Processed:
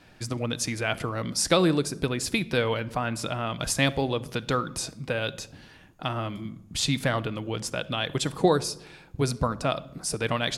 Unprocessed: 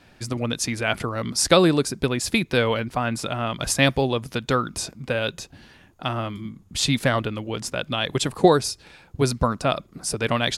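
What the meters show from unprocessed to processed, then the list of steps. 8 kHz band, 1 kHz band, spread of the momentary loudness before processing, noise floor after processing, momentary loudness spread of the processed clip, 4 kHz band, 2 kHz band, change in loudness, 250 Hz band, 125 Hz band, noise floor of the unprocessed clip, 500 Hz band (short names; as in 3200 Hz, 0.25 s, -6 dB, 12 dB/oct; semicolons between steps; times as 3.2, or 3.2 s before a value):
-3.5 dB, -4.5 dB, 12 LU, -53 dBFS, 10 LU, -4.0 dB, -4.5 dB, -4.5 dB, -4.5 dB, -3.5 dB, -54 dBFS, -5.0 dB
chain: in parallel at -2 dB: compressor, threshold -28 dBFS, peak gain reduction 17 dB; on the sum: shoebox room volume 2600 m³, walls furnished, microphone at 0.57 m; gain -6.5 dB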